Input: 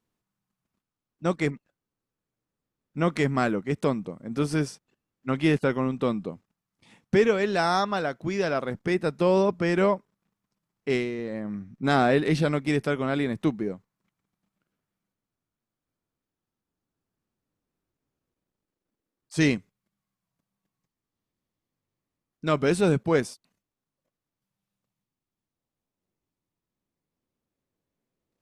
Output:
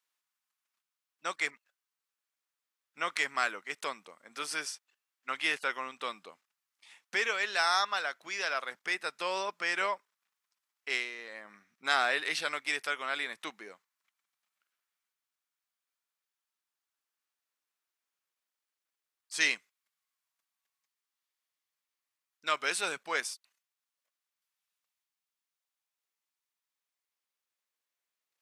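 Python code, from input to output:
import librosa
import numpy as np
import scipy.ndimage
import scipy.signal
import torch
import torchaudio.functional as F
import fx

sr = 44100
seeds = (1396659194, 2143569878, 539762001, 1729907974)

y = scipy.signal.sosfilt(scipy.signal.butter(2, 1400.0, 'highpass', fs=sr, output='sos'), x)
y = y * 10.0 ** (2.5 / 20.0)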